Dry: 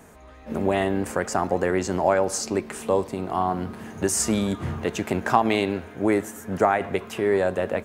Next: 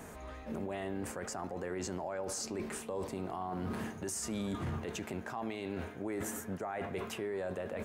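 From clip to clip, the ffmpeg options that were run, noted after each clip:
ffmpeg -i in.wav -af "areverse,acompressor=threshold=-30dB:ratio=12,areverse,alimiter=level_in=6.5dB:limit=-24dB:level=0:latency=1:release=16,volume=-6.5dB,volume=1dB" out.wav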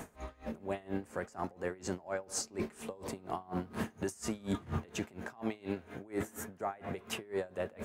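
ffmpeg -i in.wav -af "aeval=exprs='val(0)*pow(10,-24*(0.5-0.5*cos(2*PI*4.2*n/s))/20)':channel_layout=same,volume=5.5dB" out.wav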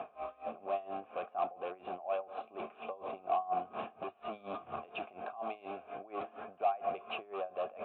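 ffmpeg -i in.wav -filter_complex "[0:a]aresample=8000,volume=35.5dB,asoftclip=hard,volume=-35.5dB,aresample=44100,asplit=3[link_01][link_02][link_03];[link_01]bandpass=frequency=730:width_type=q:width=8,volume=0dB[link_04];[link_02]bandpass=frequency=1090:width_type=q:width=8,volume=-6dB[link_05];[link_03]bandpass=frequency=2440:width_type=q:width=8,volume=-9dB[link_06];[link_04][link_05][link_06]amix=inputs=3:normalize=0,volume=14.5dB" out.wav

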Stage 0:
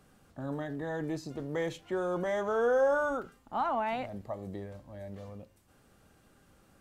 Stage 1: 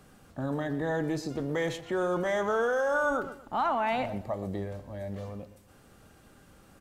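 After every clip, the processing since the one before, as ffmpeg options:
ffmpeg -i in.wav -filter_complex "[0:a]asplit=2[link_01][link_02];[link_02]adelay=122,lowpass=frequency=3900:poles=1,volume=-14dB,asplit=2[link_03][link_04];[link_04]adelay=122,lowpass=frequency=3900:poles=1,volume=0.29,asplit=2[link_05][link_06];[link_06]adelay=122,lowpass=frequency=3900:poles=1,volume=0.29[link_07];[link_01][link_03][link_05][link_07]amix=inputs=4:normalize=0,acrossover=split=1300[link_08][link_09];[link_08]alimiter=level_in=5dB:limit=-24dB:level=0:latency=1,volume=-5dB[link_10];[link_10][link_09]amix=inputs=2:normalize=0,volume=6dB" out.wav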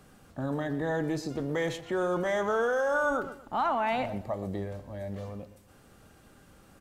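ffmpeg -i in.wav -af anull out.wav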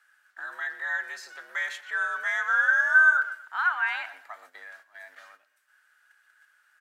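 ffmpeg -i in.wav -af "highpass=frequency=1500:width_type=q:width=6.8,agate=range=-9dB:threshold=-50dB:ratio=16:detection=peak,afreqshift=70,volume=-1.5dB" out.wav

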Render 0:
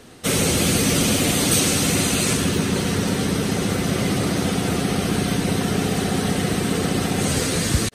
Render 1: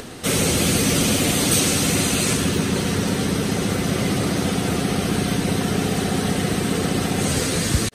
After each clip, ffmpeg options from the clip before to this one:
ffmpeg -i in.wav -af "acompressor=mode=upward:threshold=-27dB:ratio=2.5" out.wav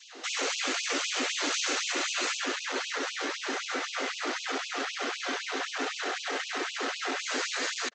ffmpeg -i in.wav -af "adynamicequalizer=threshold=0.00794:dfrequency=1500:dqfactor=1:tfrequency=1500:tqfactor=1:attack=5:release=100:ratio=0.375:range=4:mode=boostabove:tftype=bell,aresample=16000,volume=19dB,asoftclip=hard,volume=-19dB,aresample=44100,afftfilt=real='re*gte(b*sr/1024,220*pow(2500/220,0.5+0.5*sin(2*PI*3.9*pts/sr)))':imag='im*gte(b*sr/1024,220*pow(2500/220,0.5+0.5*sin(2*PI*3.9*pts/sr)))':win_size=1024:overlap=0.75,volume=-6dB" out.wav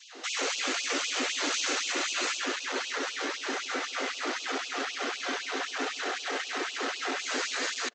ffmpeg -i in.wav -filter_complex "[0:a]asplit=2[link_01][link_02];[link_02]adelay=166,lowpass=frequency=930:poles=1,volume=-20.5dB,asplit=2[link_03][link_04];[link_04]adelay=166,lowpass=frequency=930:poles=1,volume=0.48,asplit=2[link_05][link_06];[link_06]adelay=166,lowpass=frequency=930:poles=1,volume=0.48,asplit=2[link_07][link_08];[link_08]adelay=166,lowpass=frequency=930:poles=1,volume=0.48[link_09];[link_01][link_03][link_05][link_07][link_09]amix=inputs=5:normalize=0" out.wav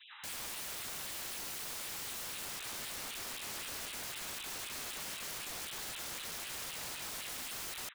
ffmpeg -i in.wav -af "aecho=1:1:120:0.141,afftfilt=real='re*between(b*sr/4096,800,4000)':imag='im*between(b*sr/4096,800,4000)':win_size=4096:overlap=0.75,aeval=exprs='(mod(59.6*val(0)+1,2)-1)/59.6':channel_layout=same,volume=-2dB" out.wav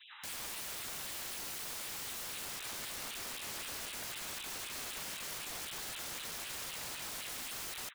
ffmpeg -i in.wav -ar 44100 -c:a aac -b:a 160k out.aac

